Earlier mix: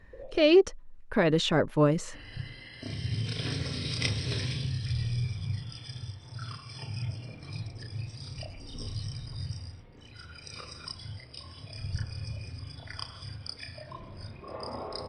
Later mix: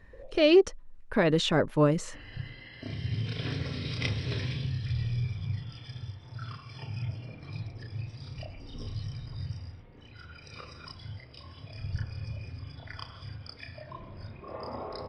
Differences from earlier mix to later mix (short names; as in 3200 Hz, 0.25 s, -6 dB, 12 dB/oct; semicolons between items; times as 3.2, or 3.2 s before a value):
first sound -4.0 dB; second sound: add LPF 3500 Hz 12 dB/oct